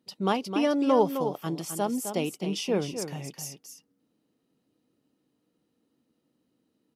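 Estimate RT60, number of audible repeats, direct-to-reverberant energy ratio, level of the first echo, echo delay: no reverb audible, 1, no reverb audible, −8.5 dB, 260 ms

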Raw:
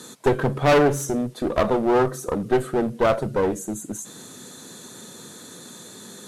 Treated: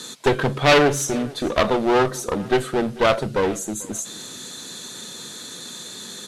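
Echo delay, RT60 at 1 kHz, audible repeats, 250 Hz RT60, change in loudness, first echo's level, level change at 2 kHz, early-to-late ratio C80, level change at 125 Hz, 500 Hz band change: 442 ms, no reverb audible, 2, no reverb audible, +1.5 dB, −22.0 dB, +6.0 dB, no reverb audible, 0.0 dB, +0.5 dB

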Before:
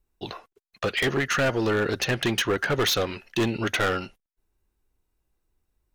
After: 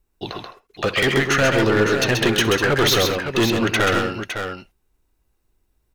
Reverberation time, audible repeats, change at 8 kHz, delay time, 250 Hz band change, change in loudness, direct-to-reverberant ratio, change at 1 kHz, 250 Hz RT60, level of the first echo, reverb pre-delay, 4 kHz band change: no reverb audible, 4, +7.0 dB, 64 ms, +7.0 dB, +6.5 dB, no reverb audible, +7.0 dB, no reverb audible, −18.0 dB, no reverb audible, +7.0 dB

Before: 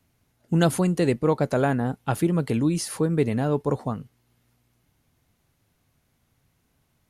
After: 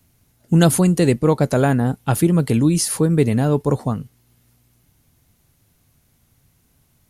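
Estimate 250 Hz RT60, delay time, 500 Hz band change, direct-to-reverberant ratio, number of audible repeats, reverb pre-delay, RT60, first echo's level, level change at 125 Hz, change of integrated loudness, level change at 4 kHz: no reverb audible, no echo audible, +4.5 dB, no reverb audible, no echo audible, no reverb audible, no reverb audible, no echo audible, +8.0 dB, +6.5 dB, +7.0 dB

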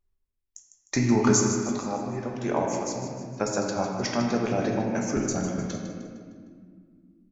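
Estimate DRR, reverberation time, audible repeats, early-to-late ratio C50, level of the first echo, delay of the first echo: −0.5 dB, 2.0 s, 2, 1.5 dB, −10.0 dB, 153 ms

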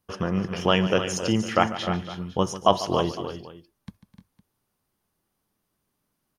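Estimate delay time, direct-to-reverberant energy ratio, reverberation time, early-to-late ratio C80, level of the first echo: 145 ms, no reverb audible, no reverb audible, no reverb audible, −14.5 dB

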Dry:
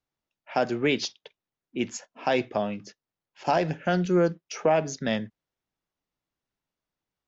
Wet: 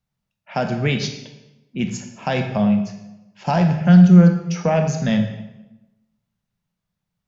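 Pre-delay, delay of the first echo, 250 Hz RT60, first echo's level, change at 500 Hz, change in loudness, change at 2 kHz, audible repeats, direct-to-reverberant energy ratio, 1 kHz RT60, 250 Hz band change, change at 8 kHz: 22 ms, no echo audible, 1.1 s, no echo audible, +2.0 dB, +9.5 dB, +3.5 dB, no echo audible, 5.5 dB, 0.95 s, +13.5 dB, can't be measured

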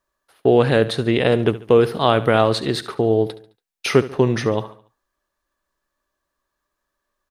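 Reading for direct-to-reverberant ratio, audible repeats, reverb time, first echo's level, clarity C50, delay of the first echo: no reverb audible, 3, no reverb audible, −16.0 dB, no reverb audible, 71 ms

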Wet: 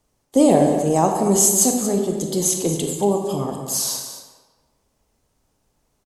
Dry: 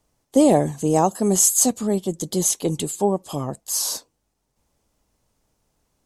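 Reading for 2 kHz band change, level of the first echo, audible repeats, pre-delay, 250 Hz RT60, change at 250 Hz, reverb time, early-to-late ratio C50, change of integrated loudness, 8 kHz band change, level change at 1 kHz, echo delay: +1.5 dB, −11.5 dB, 1, 26 ms, 1.2 s, +2.0 dB, 1.3 s, 3.5 dB, +1.5 dB, +1.0 dB, +2.0 dB, 231 ms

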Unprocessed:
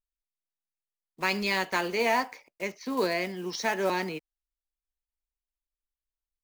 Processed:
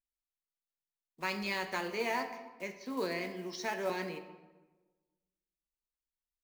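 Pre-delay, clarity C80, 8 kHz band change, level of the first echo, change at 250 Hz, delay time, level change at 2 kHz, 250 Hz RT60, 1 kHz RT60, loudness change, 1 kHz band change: 3 ms, 12.0 dB, −8.0 dB, no echo audible, −7.0 dB, no echo audible, −8.0 dB, 1.4 s, 1.2 s, −7.5 dB, −8.0 dB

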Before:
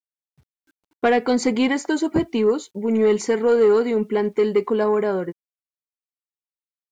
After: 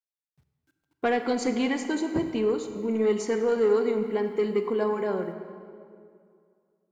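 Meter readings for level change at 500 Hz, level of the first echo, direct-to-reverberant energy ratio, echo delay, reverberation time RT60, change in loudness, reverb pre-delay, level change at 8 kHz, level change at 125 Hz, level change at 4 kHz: −6.0 dB, no echo audible, 7.0 dB, no echo audible, 2.3 s, −6.5 dB, 29 ms, −6.5 dB, −6.0 dB, −6.5 dB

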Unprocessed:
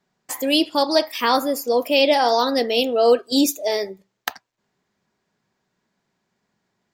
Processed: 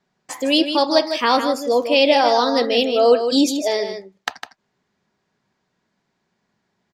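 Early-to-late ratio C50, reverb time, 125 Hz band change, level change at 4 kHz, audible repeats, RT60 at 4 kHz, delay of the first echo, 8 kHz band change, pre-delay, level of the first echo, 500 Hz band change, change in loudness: no reverb audible, no reverb audible, can't be measured, +1.5 dB, 1, no reverb audible, 155 ms, −1.5 dB, no reverb audible, −8.5 dB, +2.0 dB, +2.0 dB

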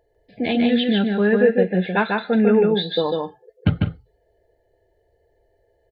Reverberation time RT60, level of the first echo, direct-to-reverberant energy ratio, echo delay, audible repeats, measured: no reverb audible, −3.0 dB, no reverb audible, 148 ms, 2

